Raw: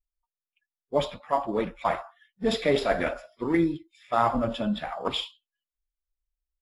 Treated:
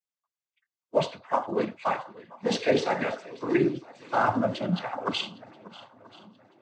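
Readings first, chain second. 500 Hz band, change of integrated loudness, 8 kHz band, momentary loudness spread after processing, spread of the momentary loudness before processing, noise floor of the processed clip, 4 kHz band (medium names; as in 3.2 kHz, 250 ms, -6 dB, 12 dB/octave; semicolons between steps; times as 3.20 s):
0.0 dB, -0.5 dB, +2.0 dB, 14 LU, 8 LU, under -85 dBFS, -1.0 dB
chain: shuffle delay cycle 982 ms, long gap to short 1.5:1, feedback 37%, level -19.5 dB; noise-vocoded speech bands 16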